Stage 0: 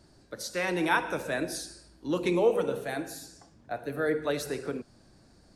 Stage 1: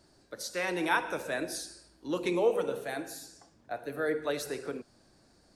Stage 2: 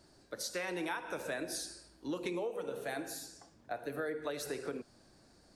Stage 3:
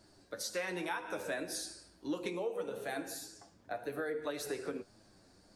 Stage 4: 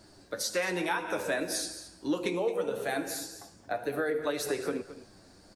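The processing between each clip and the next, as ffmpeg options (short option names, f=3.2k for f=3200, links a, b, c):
-af "bass=f=250:g=-6,treble=f=4k:g=1,volume=-2dB"
-af "acompressor=threshold=-34dB:ratio=12"
-af "flanger=delay=9.2:depth=1.9:regen=44:speed=1.8:shape=triangular,volume=4dB"
-af "aecho=1:1:219:0.188,volume=7dB"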